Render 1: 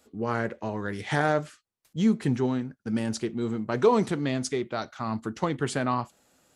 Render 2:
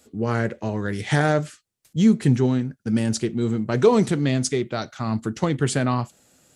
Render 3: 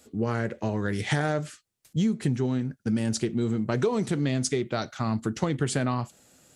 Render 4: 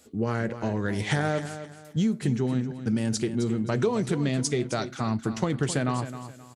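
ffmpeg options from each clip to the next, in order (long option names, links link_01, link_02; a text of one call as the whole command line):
ffmpeg -i in.wav -af "equalizer=frequency=125:width_type=o:width=1:gain=5,equalizer=frequency=1000:width_type=o:width=1:gain=-5,equalizer=frequency=8000:width_type=o:width=1:gain=4,volume=5dB" out.wav
ffmpeg -i in.wav -af "acompressor=threshold=-22dB:ratio=6" out.wav
ffmpeg -i in.wav -af "aecho=1:1:264|528|792:0.266|0.0798|0.0239" out.wav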